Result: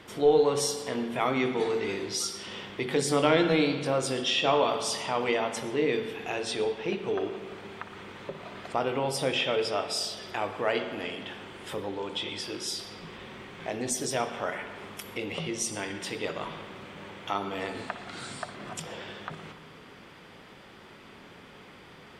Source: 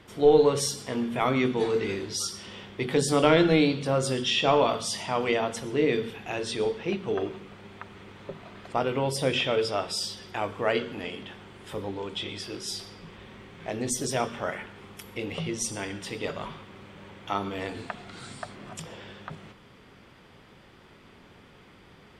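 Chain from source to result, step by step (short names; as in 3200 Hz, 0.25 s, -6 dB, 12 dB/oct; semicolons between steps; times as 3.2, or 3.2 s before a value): low shelf 140 Hz -9.5 dB; in parallel at +2.5 dB: compressor, threshold -40 dBFS, peak gain reduction 23 dB; on the sum: spring tank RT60 1.9 s, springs 57 ms, chirp 60 ms, DRR 9 dB; gain -3 dB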